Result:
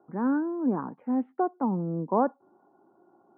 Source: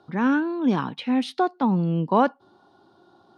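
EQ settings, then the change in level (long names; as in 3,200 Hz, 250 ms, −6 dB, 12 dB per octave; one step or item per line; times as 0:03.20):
high-pass filter 220 Hz 12 dB per octave
Bessel low-pass filter 860 Hz, order 8
−2.5 dB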